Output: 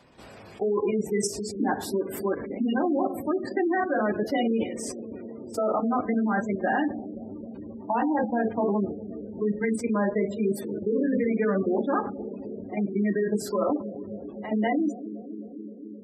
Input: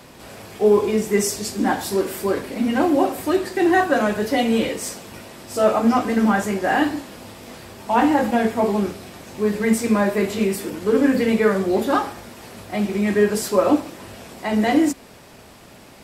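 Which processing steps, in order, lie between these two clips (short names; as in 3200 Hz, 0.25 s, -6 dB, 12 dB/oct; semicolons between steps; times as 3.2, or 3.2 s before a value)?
level quantiser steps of 11 dB; analogue delay 0.263 s, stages 1024, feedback 84%, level -14 dB; spectral gate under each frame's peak -20 dB strong; gain -2 dB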